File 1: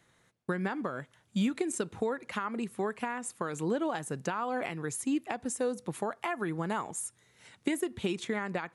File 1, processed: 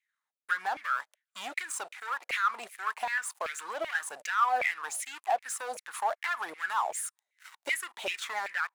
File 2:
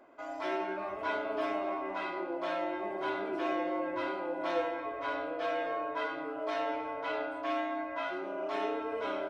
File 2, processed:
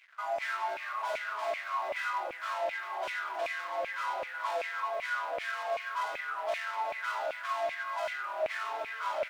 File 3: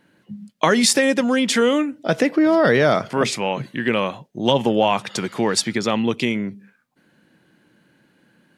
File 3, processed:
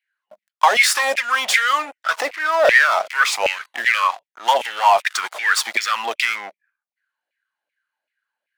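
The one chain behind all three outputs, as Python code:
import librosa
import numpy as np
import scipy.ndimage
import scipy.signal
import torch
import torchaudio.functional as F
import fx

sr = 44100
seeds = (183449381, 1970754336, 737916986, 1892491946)

y = fx.tilt_shelf(x, sr, db=-5.0, hz=750.0)
y = fx.leveller(y, sr, passes=5)
y = fx.filter_lfo_highpass(y, sr, shape='saw_down', hz=2.6, low_hz=570.0, high_hz=2400.0, q=6.4)
y = y * librosa.db_to_amplitude(-18.0)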